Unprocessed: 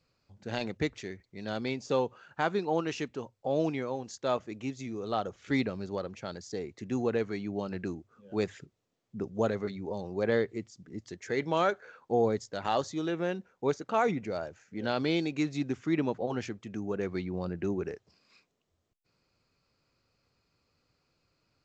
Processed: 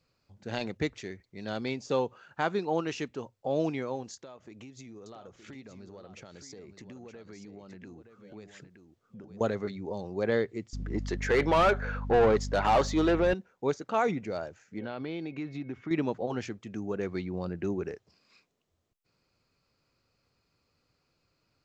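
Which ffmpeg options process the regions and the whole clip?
-filter_complex "[0:a]asettb=1/sr,asplit=3[s0][s1][s2];[s0]atrim=end=4.144[s3];[s1]atrim=start=4.14:end=9.41,asetpts=PTS-STARTPTS,afade=t=in:d=0.004:c=qsin,afade=t=out:st=5.266:d=0.004:c=qsin,acompressor=threshold=0.00708:ratio=16:attack=3.2:release=140:knee=1:detection=peak,aecho=1:1:919:0.355,atrim=end_sample=232407[s4];[s2]atrim=start=9.406[s5];[s3][s4]acrossfade=d=0.004:c1=hsin:c2=qsin[s6];[s6][s5]acrossfade=d=0.004:c1=qsin:c2=hsin,asettb=1/sr,asplit=3[s7][s8][s9];[s7]atrim=end=10.734[s10];[s8]atrim=start=10.73:end=13.34,asetpts=PTS-STARTPTS,afade=t=in:d=0.004:c=qsin,afade=t=out:st=2.606:d=0.004:c=qsin,asplit=2[s11][s12];[s12]highpass=f=720:p=1,volume=14.1,asoftclip=type=tanh:threshold=0.188[s13];[s11][s13]amix=inputs=2:normalize=0,lowpass=f=1700:p=1,volume=0.501,aeval=exprs='val(0)+0.02*(sin(2*PI*50*n/s)+sin(2*PI*2*50*n/s)/2+sin(2*PI*3*50*n/s)/3+sin(2*PI*4*50*n/s)/4+sin(2*PI*5*50*n/s)/5)':c=same[s14];[s9]atrim=start=13.336[s15];[s10][s14]acrossfade=d=0.004:c1=hsin:c2=qsin[s16];[s16][s15]acrossfade=d=0.004:c1=qsin:c2=hsin,asettb=1/sr,asplit=3[s17][s18][s19];[s17]atrim=end=14.794[s20];[s18]atrim=start=14.79:end=15.91,asetpts=PTS-STARTPTS,afade=t=in:d=0.004:c=qsin,afade=t=out:st=1.116:d=0.004:c=qsin,lowpass=2800,aeval=exprs='val(0)+0.00112*sin(2*PI*2200*n/s)':c=same,acompressor=threshold=0.02:ratio=3:attack=3.2:release=140:knee=1:detection=peak[s21];[s19]atrim=start=15.906[s22];[s20][s21]acrossfade=d=0.004:c1=hsin:c2=qsin[s23];[s23][s22]acrossfade=d=0.004:c1=qsin:c2=hsin"

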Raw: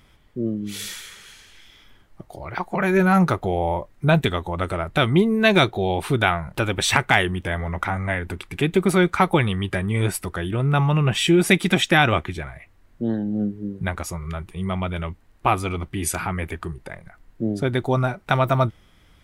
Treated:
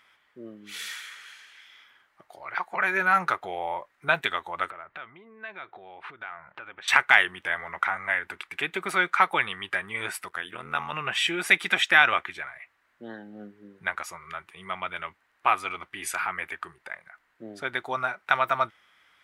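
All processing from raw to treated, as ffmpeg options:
-filter_complex "[0:a]asettb=1/sr,asplit=3[s0][s1][s2];[s0]atrim=end=4.704[s3];[s1]atrim=start=4.7:end=6.88,asetpts=PTS-STARTPTS,afade=t=in:d=0.004:c=qsin,afade=t=out:st=2.176:d=0.004:c=qsin,lowpass=2200,acompressor=threshold=0.0224:ratio=6:attack=3.2:release=140:knee=1:detection=peak[s4];[s2]atrim=start=6.876[s5];[s3][s4]acrossfade=d=0.004:c1=hsin:c2=qsin[s6];[s6][s5]acrossfade=d=0.004:c1=qsin:c2=hsin,asettb=1/sr,asplit=3[s7][s8][s9];[s7]atrim=end=10.284[s10];[s8]atrim=start=10.28:end=10.93,asetpts=PTS-STARTPTS,afade=t=in:d=0.004:c=qsin,afade=t=out:st=0.646:d=0.004:c=qsin,highshelf=f=4900:g=6.5,tremolo=f=83:d=0.889[s11];[s9]atrim=start=10.926[s12];[s10][s11]acrossfade=d=0.004:c1=hsin:c2=qsin[s13];[s13][s12]acrossfade=d=0.004:c1=qsin:c2=hsin,highpass=f=850:p=1,equalizer=f=1600:w=0.57:g=13,volume=0.335"

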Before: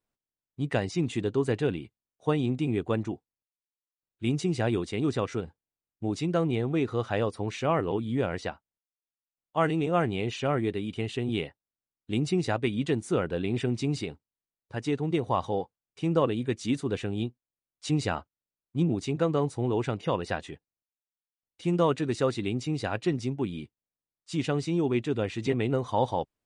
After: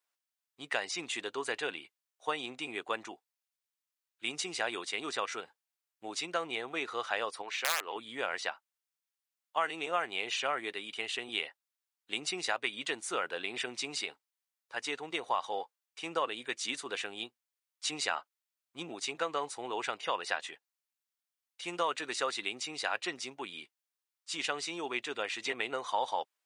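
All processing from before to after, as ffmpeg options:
-filter_complex "[0:a]asettb=1/sr,asplit=3[s0][s1][s2];[s0]atrim=end=7.424[s3];[s1]atrim=start=7.42:end=7.96,asetpts=PTS-STARTPTS,afade=t=in:d=0.004:c=qsin,afade=t=out:st=0.536:d=0.004:c=qsin,highpass=f=440:p=1,adynamicsmooth=sensitivity=2.5:basefreq=6000,aeval=exprs='(mod(9.44*val(0)+1,2)-1)/9.44':c=same[s4];[s2]atrim=start=7.956[s5];[s3][s4]acrossfade=d=0.004:c1=hsin:c2=qsin[s6];[s6][s5]acrossfade=d=0.004:c1=qsin:c2=hsin,highpass=1000,acompressor=threshold=0.0251:ratio=3,volume=1.68"

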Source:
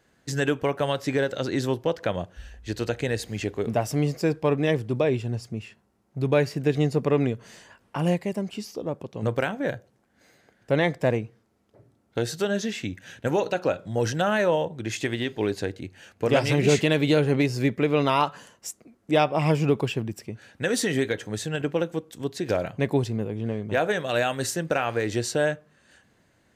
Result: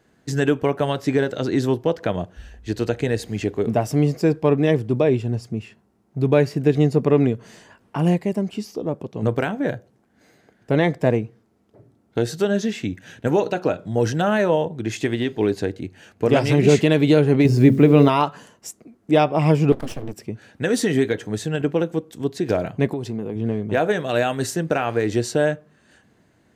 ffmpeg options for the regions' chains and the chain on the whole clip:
-filter_complex "[0:a]asettb=1/sr,asplit=3[s0][s1][s2];[s0]atrim=end=17.454[s3];[s1]atrim=start=17.45:end=18.09,asetpts=PTS-STARTPTS,afade=t=in:d=0.004:c=qsin,afade=t=out:st=0.636:d=0.004:c=qsin,lowshelf=f=390:g=8.5,bandreject=f=45.08:t=h:w=4,bandreject=f=90.16:t=h:w=4,bandreject=f=135.24:t=h:w=4,bandreject=f=180.32:t=h:w=4,bandreject=f=225.4:t=h:w=4,bandreject=f=270.48:t=h:w=4,bandreject=f=315.56:t=h:w=4,bandreject=f=360.64:t=h:w=4,bandreject=f=405.72:t=h:w=4,bandreject=f=450.8:t=h:w=4,bandreject=f=495.88:t=h:w=4,bandreject=f=540.96:t=h:w=4,bandreject=f=586.04:t=h:w=4,bandreject=f=631.12:t=h:w=4,acrusher=bits=9:dc=4:mix=0:aa=0.000001[s4];[s2]atrim=start=18.086[s5];[s3][s4]acrossfade=d=0.004:c1=hsin:c2=qsin[s6];[s6][s5]acrossfade=d=0.004:c1=qsin:c2=hsin,asettb=1/sr,asplit=3[s7][s8][s9];[s7]atrim=end=19.724[s10];[s8]atrim=start=19.72:end=20.13,asetpts=PTS-STARTPTS,afade=t=in:d=0.004:c=qsin,afade=t=out:st=0.406:d=0.004:c=qsin,acrossover=split=200|3000[s11][s12][s13];[s12]acompressor=threshold=0.0158:ratio=2:attack=3.2:release=140:knee=2.83:detection=peak[s14];[s11][s14][s13]amix=inputs=3:normalize=0,bandreject=f=60:t=h:w=6,bandreject=f=120:t=h:w=6,bandreject=f=180:t=h:w=6,bandreject=f=240:t=h:w=6,bandreject=f=300:t=h:w=6,bandreject=f=360:t=h:w=6,aeval=exprs='abs(val(0))':c=same[s15];[s9]atrim=start=20.126[s16];[s10][s15]acrossfade=d=0.004:c1=hsin:c2=qsin[s17];[s17][s16]acrossfade=d=0.004:c1=qsin:c2=hsin,asettb=1/sr,asplit=3[s18][s19][s20];[s18]atrim=end=22.874[s21];[s19]atrim=start=22.87:end=23.36,asetpts=PTS-STARTPTS,afade=t=in:d=0.004:c=qsin,afade=t=out:st=0.486:d=0.004:c=qsin,equalizer=f=86:t=o:w=0.99:g=-8,acompressor=threshold=0.0447:ratio=10:attack=3.2:release=140:knee=1:detection=peak[s22];[s20]atrim=start=23.356[s23];[s21][s22]acrossfade=d=0.004:c1=hsin:c2=qsin[s24];[s24][s23]acrossfade=d=0.004:c1=qsin:c2=hsin,equalizer=f=260:w=0.34:g=6.5,bandreject=f=540:w=12"

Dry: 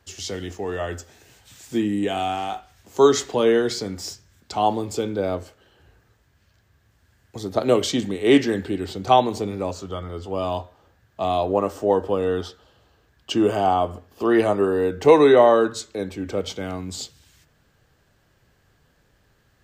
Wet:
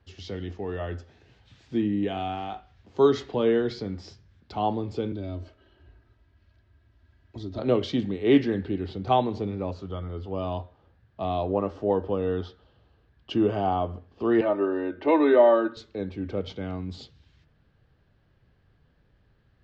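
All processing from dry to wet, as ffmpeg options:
-filter_complex "[0:a]asettb=1/sr,asplit=3[s0][s1][s2];[s0]atrim=end=5.124[s3];[s1]atrim=start=5.12:end=7.59,asetpts=PTS-STARTPTS,afade=t=in:d=0.004:c=qsin,afade=t=out:st=2.466:d=0.004:c=qsin,aecho=1:1:3.1:0.71,atrim=end_sample=108927,acrossover=split=250|3000[s4][s5][s6];[s5]acompressor=threshold=0.01:ratio=2.5:attack=3.2:release=140:knee=2.83:detection=peak[s7];[s4][s7][s6]amix=inputs=3:normalize=0[s8];[s2]atrim=start=7.586[s9];[s3][s8]acrossfade=d=0.004:c1=hsin:c2=qsin[s10];[s10][s9]acrossfade=d=0.004:c1=qsin:c2=hsin,asettb=1/sr,asplit=3[s11][s12][s13];[s11]atrim=end=14.414[s14];[s12]atrim=start=14.41:end=15.77,asetpts=PTS-STARTPTS,afade=t=in:d=0.004:c=qsin,afade=t=out:st=1.356:d=0.004:c=qsin,acrossover=split=260 4000:gain=0.141 1 0.0708[s15][s16][s17];[s15][s16][s17]amix=inputs=3:normalize=0,aecho=1:1:3.3:0.7,atrim=end_sample=59976[s18];[s13]atrim=start=15.766[s19];[s14][s18]acrossfade=d=0.004:c1=hsin:c2=qsin[s20];[s20][s19]acrossfade=d=0.004:c1=qsin:c2=hsin,lowpass=f=4400:w=0.5412,lowpass=f=4400:w=1.3066,lowshelf=f=320:g=9,volume=0.398"

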